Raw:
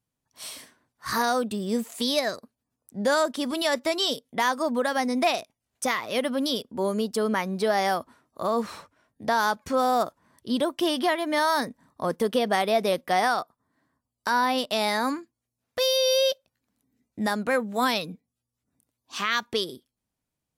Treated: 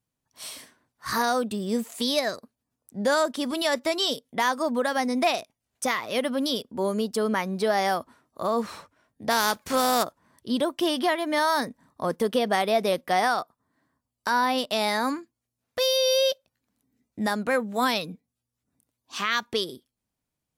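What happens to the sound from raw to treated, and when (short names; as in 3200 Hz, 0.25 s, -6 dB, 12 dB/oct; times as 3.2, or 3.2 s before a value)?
9.29–10.03 spectral contrast lowered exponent 0.65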